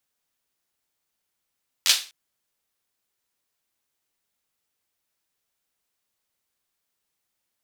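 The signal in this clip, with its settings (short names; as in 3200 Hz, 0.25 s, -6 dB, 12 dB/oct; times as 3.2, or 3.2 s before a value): hand clap length 0.25 s, apart 11 ms, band 3800 Hz, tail 0.33 s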